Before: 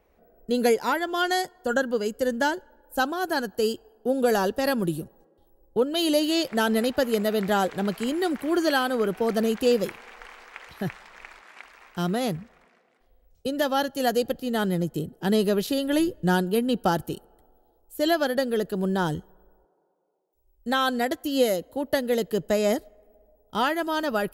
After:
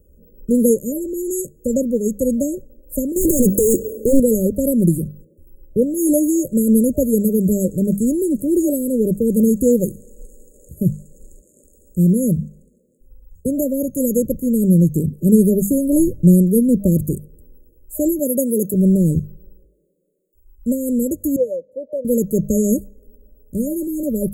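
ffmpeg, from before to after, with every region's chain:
-filter_complex "[0:a]asettb=1/sr,asplit=3[a][b][c];[a]atrim=end=3.164[d];[b]atrim=start=3.16:end=4.2,asetpts=PTS-STARTPTS,afade=t=in:d=0.004:c=qsin,afade=t=out:st=1.036:d=0.004:c=qsin,asplit=2[e][f];[f]highpass=f=720:p=1,volume=35dB,asoftclip=type=tanh:threshold=-12.5dB[g];[e][g]amix=inputs=2:normalize=0,lowpass=f=6.4k:p=1,volume=-6dB,aeval=exprs='0.141*(abs(mod(val(0)/0.141+3,4)-2)-1)':c=same[h];[c]atrim=start=4.196[i];[d][h]acrossfade=d=0.004:c1=hsin:c2=qsin[j];[j][i]acrossfade=d=0.004:c1=qsin:c2=hsin,asettb=1/sr,asplit=3[k][l][m];[k]atrim=end=18.194[n];[l]atrim=start=18.19:end=18.74,asetpts=PTS-STARTPTS,afade=t=in:d=0.004:c=qsin,afade=t=out:st=0.546:d=0.004:c=qsin,highpass=170,aemphasis=mode=production:type=cd[o];[m]atrim=start=18.736[p];[n][o]acrossfade=d=0.004:c1=hsin:c2=qsin[q];[q][p]acrossfade=d=0.004:c1=qsin:c2=hsin,asettb=1/sr,asplit=3[r][s][t];[r]atrim=end=21.364[u];[s]atrim=start=21.36:end=22.05,asetpts=PTS-STARTPTS,afade=t=in:d=0.004:c=qsin,afade=t=out:st=0.686:d=0.004:c=qsin,asplit=3[v][w][x];[v]bandpass=f=530:t=q:w=8,volume=0dB[y];[w]bandpass=f=1.84k:t=q:w=8,volume=-6dB[z];[x]bandpass=f=2.48k:t=q:w=8,volume=-9dB[aa];[y][z][aa]amix=inputs=3:normalize=0,equalizer=f=690:t=o:w=0.34:g=7.5[ab];[t]atrim=start=22.046[ac];[u][ab]acrossfade=d=0.004:c1=hsin:c2=qsin[ad];[ad][ac]acrossfade=d=0.004:c1=qsin:c2=hsin,afftfilt=real='re*(1-between(b*sr/4096,610,6500))':imag='im*(1-between(b*sr/4096,610,6500))':win_size=4096:overlap=0.75,bass=f=250:g=15,treble=f=4k:g=9,bandreject=f=50:t=h:w=6,bandreject=f=100:t=h:w=6,bandreject=f=150:t=h:w=6,bandreject=f=200:t=h:w=6,volume=3.5dB"

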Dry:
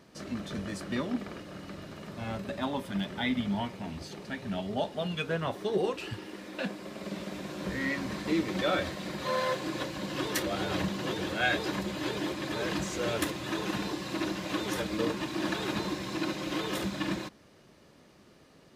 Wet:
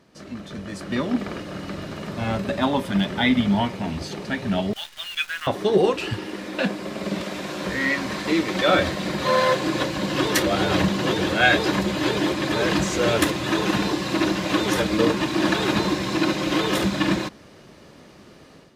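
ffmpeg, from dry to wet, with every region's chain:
-filter_complex "[0:a]asettb=1/sr,asplit=3[a][b][c];[a]atrim=end=4.734[d];[b]atrim=start=4.73:end=5.47,asetpts=PTS-STARTPTS,afade=t=in:d=0.004:c=qsin,afade=t=out:st=0.736:d=0.004:c=qsin,highpass=f=1.5k:w=0.5412,highpass=f=1.5k:w=1.3066,acrusher=bits=9:dc=4:mix=0:aa=0.000001[e];[c]atrim=start=5.466[f];[d][e]acrossfade=d=0.004:c1=hsin:c2=qsin[g];[g][f]acrossfade=d=0.004:c1=qsin:c2=hsin,asettb=1/sr,asplit=3[h][i][j];[h]atrim=end=7.214[k];[i]atrim=start=7.21:end=8.69,asetpts=PTS-STARTPTS,afade=t=in:d=0.004:c=qsin,afade=t=out:st=1.476:d=0.004:c=qsin,lowshelf=f=330:g=-8,acompressor=mode=upward:threshold=-37dB:ratio=2.5:attack=3.2:release=140:knee=2.83:detection=peak[l];[j]atrim=start=8.686[m];[k][l]acrossfade=d=0.004:c1=hsin:c2=qsin[n];[n][m]acrossfade=d=0.004:c1=qsin:c2=hsin,highshelf=f=10k:g=-5,dynaudnorm=f=640:g=3:m=11dB"

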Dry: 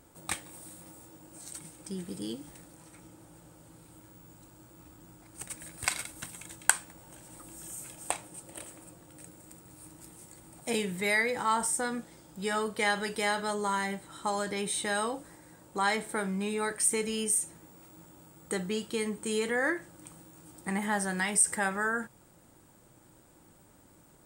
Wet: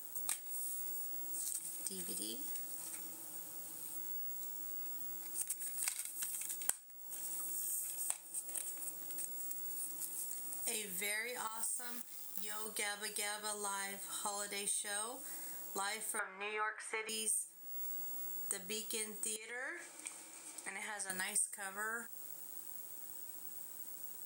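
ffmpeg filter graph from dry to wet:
-filter_complex "[0:a]asettb=1/sr,asplit=3[a][b][c];[a]atrim=end=11.474[d];[b]atrim=start=11.47:end=12.66,asetpts=PTS-STARTPTS,afade=t=in:d=0.004:c=qsin,afade=t=out:st=1.186:d=0.004:c=qsin,acrusher=bits=8:dc=4:mix=0:aa=0.000001,equalizer=f=510:w=2:g=-4.5,acompressor=threshold=-35dB:ratio=8:attack=3.2:release=140:knee=1:detection=peak[e];[c]atrim=start=12.656[f];[d][e]acrossfade=d=0.004:c1=hsin:c2=qsin[g];[g][f]acrossfade=d=0.004:c1=qsin:c2=hsin,asettb=1/sr,asplit=3[h][i][j];[h]atrim=end=16.194[k];[i]atrim=start=16.19:end=17.09,asetpts=PTS-STARTPTS,afade=t=in:d=0.004:c=qsin,afade=t=out:st=0.896:d=0.004:c=qsin,highpass=430,lowpass=2k,equalizer=f=1.4k:t=o:w=2.2:g=15[l];[j]atrim=start=17.086[m];[k][l]acrossfade=d=0.004:c1=hsin:c2=qsin[n];[n][m]acrossfade=d=0.004:c1=qsin:c2=hsin,asettb=1/sr,asplit=3[o][p][q];[o]atrim=end=19.364[r];[p]atrim=start=19.36:end=21.1,asetpts=PTS-STARTPTS,afade=t=in:d=0.004:c=qsin,afade=t=out:st=1.736:d=0.004:c=qsin,equalizer=f=2.3k:w=7.8:g=12.5,acompressor=threshold=-38dB:ratio=5:attack=3.2:release=140:knee=1:detection=peak,highpass=310,lowpass=7k[s];[q]atrim=start=21.096[t];[r][s]acrossfade=d=0.004:c1=hsin:c2=qsin[u];[u][t]acrossfade=d=0.004:c1=qsin:c2=hsin,highpass=94,aemphasis=mode=production:type=riaa,acompressor=threshold=-38dB:ratio=4,volume=-1.5dB"

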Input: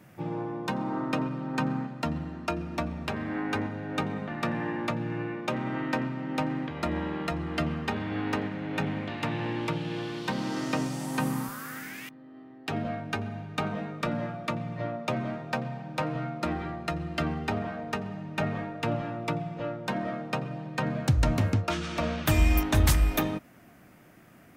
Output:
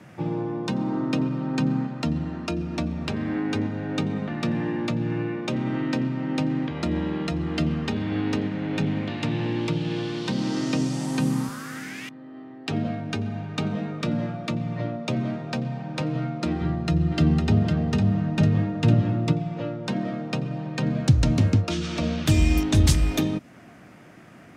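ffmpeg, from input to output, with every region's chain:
-filter_complex "[0:a]asettb=1/sr,asplit=3[a][b][c];[a]atrim=end=16.614[d];[b]atrim=start=16.61:end=19.32,asetpts=PTS-STARTPTS,afade=t=in:d=0.004:c=qsin,afade=t=out:st=2.706:d=0.004:c=qsin,equalizer=f=99:w=0.64:g=9.5,bandreject=f=2.3k:w=17,aecho=1:1:505:0.473,atrim=end_sample=119511[e];[c]atrim=start=19.316[f];[d][e]acrossfade=d=0.004:c1=hsin:c2=qsin[g];[g][f]acrossfade=d=0.004:c1=qsin:c2=hsin,lowpass=7.4k,acrossover=split=440|3000[h][i][j];[i]acompressor=threshold=-45dB:ratio=5[k];[h][k][j]amix=inputs=3:normalize=0,highpass=70,volume=7dB"

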